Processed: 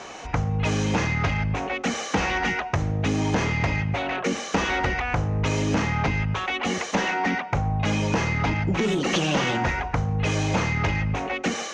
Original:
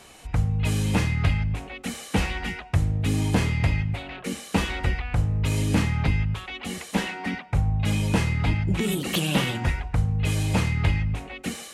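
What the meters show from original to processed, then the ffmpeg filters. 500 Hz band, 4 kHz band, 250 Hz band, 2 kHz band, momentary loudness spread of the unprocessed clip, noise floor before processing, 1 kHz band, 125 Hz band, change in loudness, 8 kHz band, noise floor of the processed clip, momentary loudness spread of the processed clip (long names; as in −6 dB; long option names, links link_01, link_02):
+6.0 dB, +1.5 dB, +1.0 dB, +5.0 dB, 8 LU, −44 dBFS, +8.0 dB, −2.0 dB, +1.0 dB, +1.5 dB, −35 dBFS, 3 LU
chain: -filter_complex "[0:a]highshelf=frequency=2800:gain=-11.5,asplit=2[link_01][link_02];[link_02]highpass=frequency=720:poles=1,volume=22dB,asoftclip=type=tanh:threshold=-8dB[link_03];[link_01][link_03]amix=inputs=2:normalize=0,lowpass=frequency=1600:poles=1,volume=-6dB,acompressor=threshold=-23dB:ratio=3,lowpass=frequency=6200:width_type=q:width=6,volume=1.5dB"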